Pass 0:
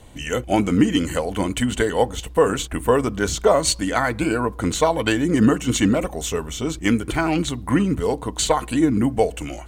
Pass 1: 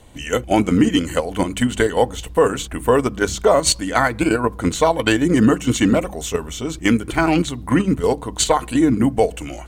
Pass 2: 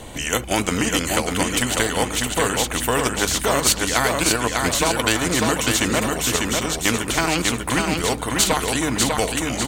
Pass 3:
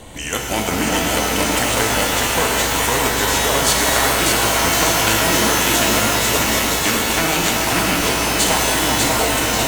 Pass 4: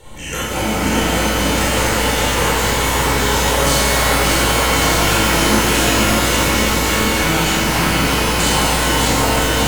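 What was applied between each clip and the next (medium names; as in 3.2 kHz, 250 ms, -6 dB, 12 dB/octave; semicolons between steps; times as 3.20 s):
hum notches 50/100/150/200 Hz; in parallel at +2 dB: level held to a coarse grid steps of 21 dB; on the sum: trim -2 dB
feedback delay 597 ms, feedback 25%, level -6 dB; spectrum-flattening compressor 2:1
on a send: repeats whose band climbs or falls 379 ms, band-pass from 770 Hz, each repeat 1.4 oct, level -1.5 dB; on the sum: pitch-shifted reverb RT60 3.3 s, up +12 st, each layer -2 dB, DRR 0 dB; trim -2 dB
reverberation RT60 1.2 s, pre-delay 30 ms, DRR -6.5 dB; trim -8.5 dB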